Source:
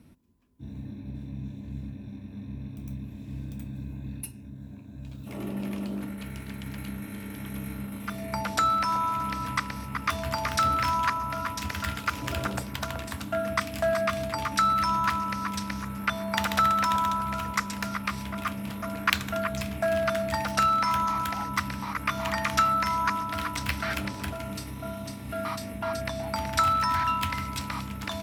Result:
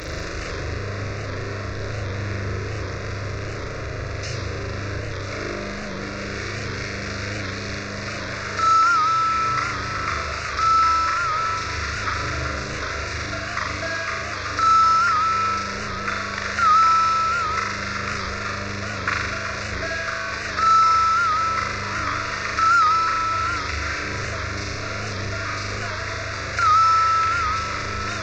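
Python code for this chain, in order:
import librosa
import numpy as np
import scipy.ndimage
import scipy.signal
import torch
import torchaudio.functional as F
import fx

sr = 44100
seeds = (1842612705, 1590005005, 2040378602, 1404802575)

p1 = fx.delta_mod(x, sr, bps=32000, step_db=-20.5)
p2 = fx.peak_eq(p1, sr, hz=2900.0, db=9.5, octaves=1.1)
p3 = fx.fixed_phaser(p2, sr, hz=840.0, stages=6)
p4 = p3 + fx.room_flutter(p3, sr, wall_m=6.9, rt60_s=1.0, dry=0)
p5 = fx.record_warp(p4, sr, rpm=78.0, depth_cents=100.0)
y = p5 * librosa.db_to_amplitude(-2.0)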